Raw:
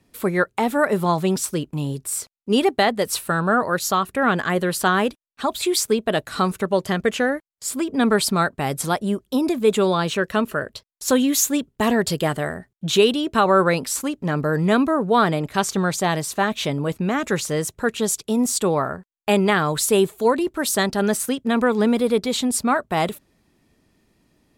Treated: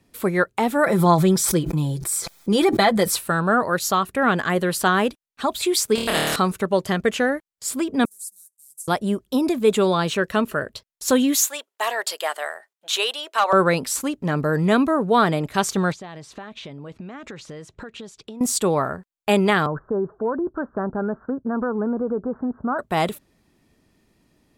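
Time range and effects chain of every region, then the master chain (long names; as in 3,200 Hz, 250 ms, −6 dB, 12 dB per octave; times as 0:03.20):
0:00.84–0:03.16: Butterworth band-reject 2,800 Hz, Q 7.8 + comb filter 5.9 ms, depth 67% + background raised ahead of every attack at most 50 dB per second
0:05.95–0:06.36: flutter between parallel walls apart 4.5 metres, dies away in 0.96 s + every bin compressed towards the loudest bin 2 to 1
0:08.05–0:08.88: variable-slope delta modulation 64 kbit/s + inverse Chebyshev high-pass filter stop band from 2,700 Hz, stop band 60 dB
0:11.36–0:13.53: high-pass filter 620 Hz 24 dB per octave + gain into a clipping stage and back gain 10 dB
0:15.92–0:18.41: downward compressor 20 to 1, threshold −32 dBFS + low-pass filter 4,500 Hz
0:19.66–0:22.79: Butterworth low-pass 1,600 Hz 96 dB per octave + downward compressor 3 to 1, threshold −21 dBFS
whole clip: no processing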